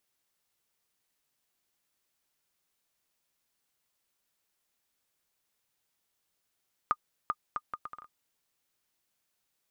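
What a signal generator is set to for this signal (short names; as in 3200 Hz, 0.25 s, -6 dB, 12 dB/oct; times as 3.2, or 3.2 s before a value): bouncing ball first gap 0.39 s, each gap 0.67, 1220 Hz, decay 50 ms -14.5 dBFS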